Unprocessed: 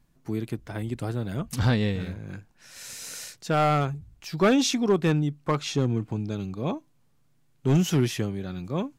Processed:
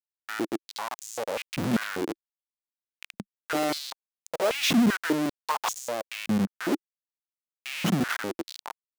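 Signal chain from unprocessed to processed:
turntable brake at the end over 0.68 s
comparator with hysteresis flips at −28 dBFS
high-pass on a step sequencer 5.1 Hz 200–6,800 Hz

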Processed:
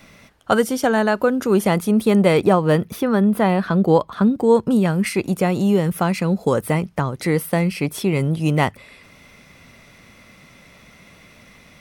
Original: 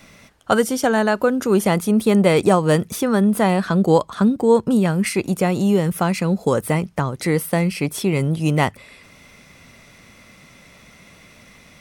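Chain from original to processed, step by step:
parametric band 7,600 Hz −4 dB 1.1 octaves, from 0:02.37 −13.5 dB, from 0:04.35 −4 dB

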